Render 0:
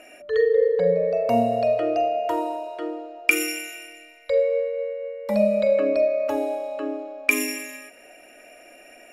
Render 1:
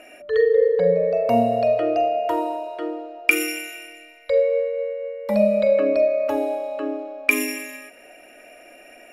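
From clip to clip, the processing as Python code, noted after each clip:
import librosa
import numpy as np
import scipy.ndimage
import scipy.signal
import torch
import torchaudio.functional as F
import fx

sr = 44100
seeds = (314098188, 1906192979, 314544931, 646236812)

y = fx.peak_eq(x, sr, hz=7000.0, db=-5.0, octaves=0.96)
y = y * librosa.db_to_amplitude(2.0)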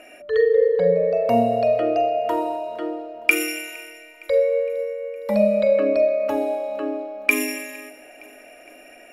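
y = fx.echo_feedback(x, sr, ms=462, feedback_pct=56, wet_db=-23)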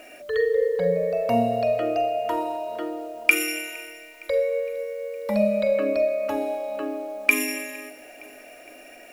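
y = fx.dynamic_eq(x, sr, hz=440.0, q=0.76, threshold_db=-29.0, ratio=4.0, max_db=-5)
y = fx.quant_dither(y, sr, seeds[0], bits=10, dither='triangular')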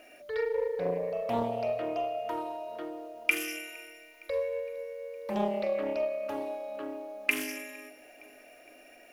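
y = fx.notch(x, sr, hz=7800.0, q=5.8)
y = fx.doppler_dist(y, sr, depth_ms=0.41)
y = y * librosa.db_to_amplitude(-8.5)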